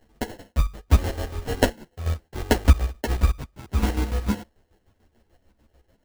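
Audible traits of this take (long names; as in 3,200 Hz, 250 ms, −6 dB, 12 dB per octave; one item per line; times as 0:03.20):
chopped level 6.8 Hz, depth 65%, duty 45%
aliases and images of a low sample rate 1,200 Hz, jitter 0%
a shimmering, thickened sound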